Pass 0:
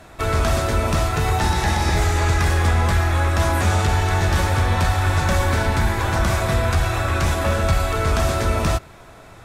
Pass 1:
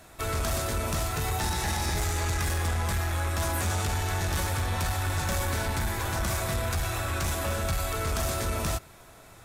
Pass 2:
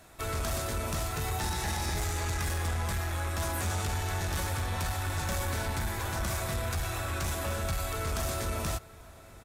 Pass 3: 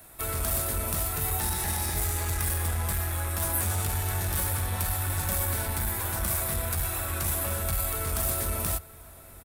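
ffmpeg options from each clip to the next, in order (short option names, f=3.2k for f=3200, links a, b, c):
-af "asoftclip=type=tanh:threshold=-13.5dB,aemphasis=mode=production:type=50kf,volume=-8.5dB"
-filter_complex "[0:a]asplit=2[a][b];[b]adelay=874.6,volume=-20dB,highshelf=f=4k:g=-19.7[c];[a][c]amix=inputs=2:normalize=0,volume=-3.5dB"
-filter_complex "[0:a]acrossover=split=160[a][b];[a]asplit=2[c][d];[d]adelay=22,volume=-5dB[e];[c][e]amix=inputs=2:normalize=0[f];[b]aexciter=amount=5.5:drive=3.5:freq=8.8k[g];[f][g]amix=inputs=2:normalize=0"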